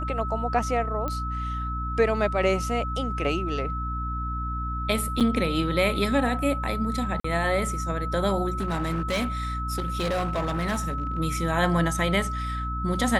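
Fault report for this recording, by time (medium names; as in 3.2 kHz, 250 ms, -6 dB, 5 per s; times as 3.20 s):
hum 60 Hz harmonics 5 -31 dBFS
whine 1.3 kHz -31 dBFS
1.08 s: pop -17 dBFS
5.20–5.21 s: dropout 6.8 ms
7.20–7.24 s: dropout 44 ms
8.57–11.19 s: clipped -22.5 dBFS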